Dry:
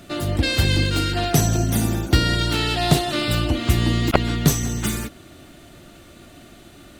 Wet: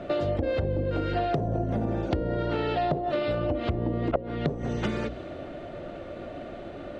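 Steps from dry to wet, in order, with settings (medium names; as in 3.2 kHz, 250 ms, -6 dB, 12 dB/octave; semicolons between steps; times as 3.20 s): low-pass that closes with the level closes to 740 Hz, closed at -14 dBFS; hum notches 60/120/180/240/300/360/420/480/540 Hz; level-controlled noise filter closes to 2.1 kHz, open at -15.5 dBFS; peaking EQ 540 Hz +14.5 dB 0.81 oct; compression 5:1, threshold -28 dBFS, peak gain reduction 21 dB; trim +2.5 dB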